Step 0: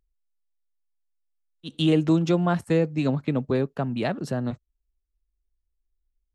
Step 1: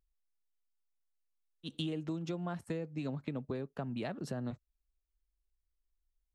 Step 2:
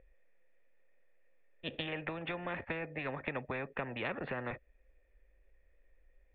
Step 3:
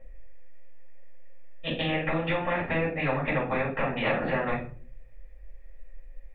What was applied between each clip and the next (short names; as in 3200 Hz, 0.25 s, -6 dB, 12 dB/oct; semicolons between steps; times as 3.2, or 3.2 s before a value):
compressor, threshold -29 dBFS, peak gain reduction 13 dB; gain -6 dB
vocal tract filter e; spectral compressor 4:1; gain +14 dB
shoebox room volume 300 m³, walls furnished, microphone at 6.3 m